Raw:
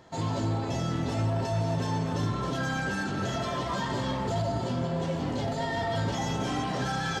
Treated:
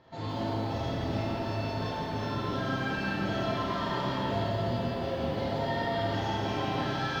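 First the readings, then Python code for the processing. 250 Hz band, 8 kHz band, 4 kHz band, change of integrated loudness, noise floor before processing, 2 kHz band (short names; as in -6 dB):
-2.0 dB, -11.5 dB, -0.5 dB, -1.5 dB, -32 dBFS, -1.0 dB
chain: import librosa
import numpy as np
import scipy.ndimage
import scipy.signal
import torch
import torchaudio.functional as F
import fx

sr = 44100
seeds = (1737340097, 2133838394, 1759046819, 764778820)

y = scipy.signal.sosfilt(scipy.signal.butter(4, 4700.0, 'lowpass', fs=sr, output='sos'), x)
y = fx.rev_schroeder(y, sr, rt60_s=1.5, comb_ms=26, drr_db=-5.0)
y = fx.echo_crushed(y, sr, ms=171, feedback_pct=55, bits=9, wet_db=-6)
y = y * librosa.db_to_amplitude(-6.5)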